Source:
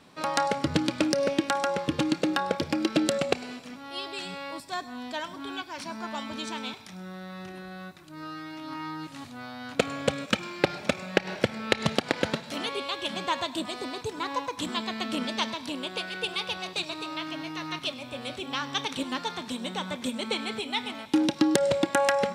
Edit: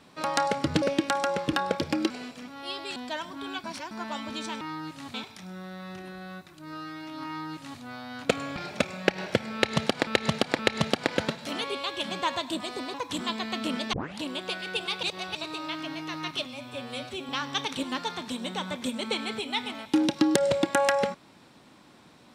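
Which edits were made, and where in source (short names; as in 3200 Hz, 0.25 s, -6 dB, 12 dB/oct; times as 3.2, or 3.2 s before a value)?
0.82–1.22 cut
1.93–2.33 cut
2.9–3.38 cut
4.24–4.99 cut
5.67–5.94 reverse
8.77–9.3 copy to 6.64
10.06–10.65 cut
11.64–12.16 loop, 3 plays
13.99–14.42 cut
15.41 tape start 0.27 s
16.51–16.83 reverse
17.93–18.49 stretch 1.5×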